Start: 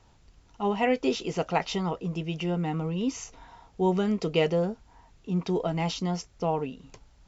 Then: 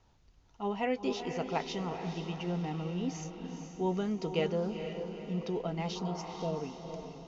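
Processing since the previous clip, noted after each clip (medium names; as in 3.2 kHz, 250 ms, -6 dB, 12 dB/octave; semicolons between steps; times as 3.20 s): spectral replace 5.98–6.54 s, 750–2600 Hz after; Chebyshev low-pass 6.7 kHz, order 5; echo that smears into a reverb 458 ms, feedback 52%, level -7.5 dB; trim -7 dB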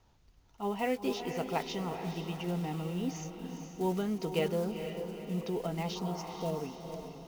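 block-companded coder 5-bit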